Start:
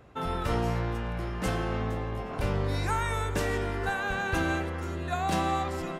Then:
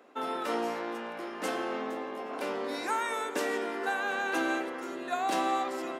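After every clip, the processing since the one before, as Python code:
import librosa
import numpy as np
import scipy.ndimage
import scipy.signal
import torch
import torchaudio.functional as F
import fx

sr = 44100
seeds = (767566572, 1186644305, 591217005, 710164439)

y = scipy.signal.sosfilt(scipy.signal.ellip(4, 1.0, 80, 250.0, 'highpass', fs=sr, output='sos'), x)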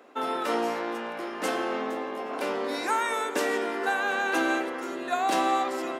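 y = fx.low_shelf(x, sr, hz=90.0, db=-7.5)
y = y * librosa.db_to_amplitude(4.5)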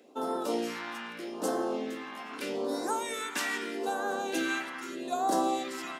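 y = fx.phaser_stages(x, sr, stages=2, low_hz=450.0, high_hz=2400.0, hz=0.8, feedback_pct=20)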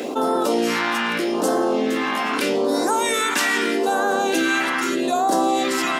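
y = fx.env_flatten(x, sr, amount_pct=70)
y = y * librosa.db_to_amplitude(7.5)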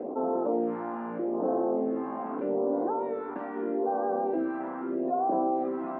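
y = fx.ladder_lowpass(x, sr, hz=970.0, resonance_pct=25)
y = y * librosa.db_to_amplitude(-2.5)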